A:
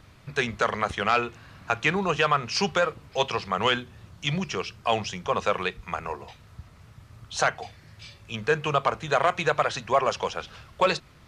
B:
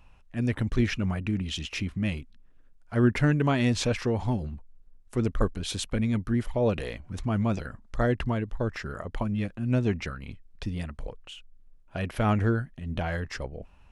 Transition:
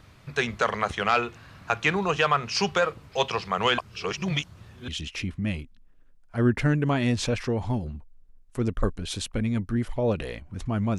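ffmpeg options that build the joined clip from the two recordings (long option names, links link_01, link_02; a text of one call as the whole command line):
ffmpeg -i cue0.wav -i cue1.wav -filter_complex "[0:a]apad=whole_dur=10.98,atrim=end=10.98,asplit=2[link_01][link_02];[link_01]atrim=end=3.782[link_03];[link_02]atrim=start=3.778:end=4.882,asetpts=PTS-STARTPTS,areverse[link_04];[1:a]atrim=start=1.458:end=7.56[link_05];[link_03][link_04]acrossfade=duration=0.004:curve1=hsin:curve2=hsin[link_06];[link_06][link_05]acrossfade=duration=0.004:curve1=hsin:curve2=hsin" out.wav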